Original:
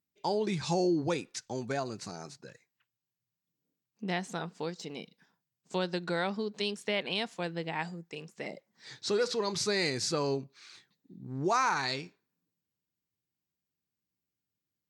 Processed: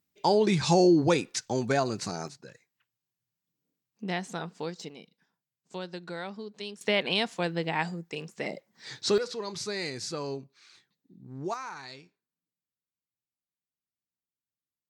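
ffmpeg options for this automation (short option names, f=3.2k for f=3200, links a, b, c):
-af "asetnsamples=n=441:p=0,asendcmd='2.28 volume volume 1dB;4.89 volume volume -6dB;6.81 volume volume 5.5dB;9.18 volume volume -4dB;11.54 volume volume -11.5dB',volume=7.5dB"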